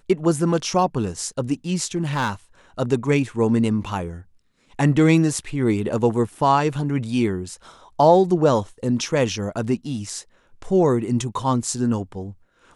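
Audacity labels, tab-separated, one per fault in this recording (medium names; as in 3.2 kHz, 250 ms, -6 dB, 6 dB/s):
1.950000	2.300000	clipped -17.5 dBFS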